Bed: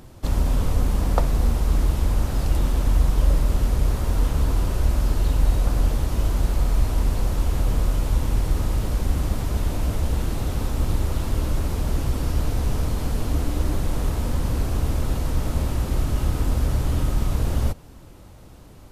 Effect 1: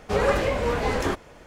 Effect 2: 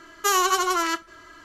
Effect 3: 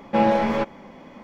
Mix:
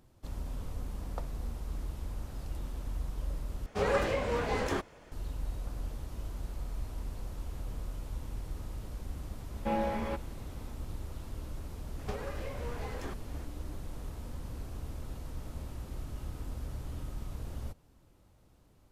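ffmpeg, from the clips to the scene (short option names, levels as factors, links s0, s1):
-filter_complex "[1:a]asplit=2[s0][s1];[0:a]volume=0.126[s2];[s1]acompressor=threshold=0.02:ratio=10:attack=30:release=523:knee=1:detection=peak[s3];[s2]asplit=2[s4][s5];[s4]atrim=end=3.664[s6];[s0]atrim=end=1.46,asetpts=PTS-STARTPTS,volume=0.447[s7];[s5]atrim=start=5.116[s8];[3:a]atrim=end=1.23,asetpts=PTS-STARTPTS,volume=0.224,afade=t=in:d=0.004:c=hsin,afade=t=out:st=1.226:d=0.004:c=hsin,adelay=9520[s9];[s3]atrim=end=1.46,asetpts=PTS-STARTPTS,volume=0.562,afade=t=in:d=0.004:c=hsin,afade=t=out:st=1.456:d=0.004:c=hsin,adelay=11990[s10];[s6][s7]acrossfade=d=0.004:c1=hsin:c2=hsin[s11];[s11][s8]acrossfade=d=0.004:c1=hsin:c2=hsin[s12];[s12][s9][s10]amix=inputs=3:normalize=0"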